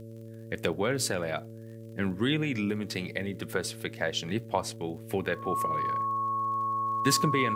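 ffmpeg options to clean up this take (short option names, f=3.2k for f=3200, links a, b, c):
-af "adeclick=t=4,bandreject=f=112.9:t=h:w=4,bandreject=f=225.8:t=h:w=4,bandreject=f=338.7:t=h:w=4,bandreject=f=451.6:t=h:w=4,bandreject=f=564.5:t=h:w=4,bandreject=f=1.1k:w=30,agate=range=-21dB:threshold=-36dB"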